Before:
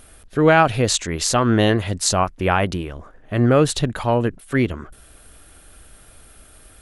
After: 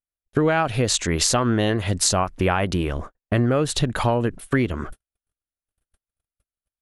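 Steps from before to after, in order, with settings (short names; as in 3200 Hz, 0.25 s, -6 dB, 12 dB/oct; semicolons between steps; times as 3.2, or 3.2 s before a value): gate -38 dBFS, range -60 dB; compressor 6:1, threshold -25 dBFS, peak gain reduction 15 dB; gain +7.5 dB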